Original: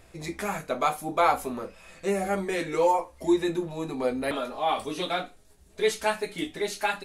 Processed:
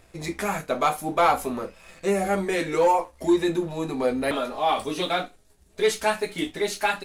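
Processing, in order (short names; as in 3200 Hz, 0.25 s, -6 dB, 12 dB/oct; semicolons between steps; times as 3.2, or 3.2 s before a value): sample leveller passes 1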